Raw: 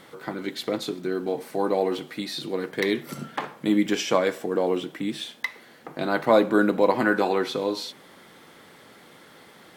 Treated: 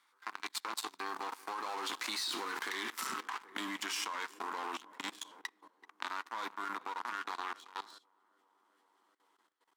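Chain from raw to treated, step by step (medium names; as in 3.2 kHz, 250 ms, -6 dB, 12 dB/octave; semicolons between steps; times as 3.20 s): partial rectifier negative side -7 dB; Doppler pass-by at 2.53 s, 16 m/s, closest 3.7 m; waveshaping leveller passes 3; resonant low shelf 760 Hz -10 dB, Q 3; tape echo 387 ms, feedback 75%, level -23 dB, low-pass 1.2 kHz; compression 8:1, threshold -36 dBFS, peak gain reduction 16.5 dB; high-pass 250 Hz 24 dB/octave; level held to a coarse grid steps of 17 dB; peaking EQ 6.8 kHz +5 dB 1.5 oct; trim +11.5 dB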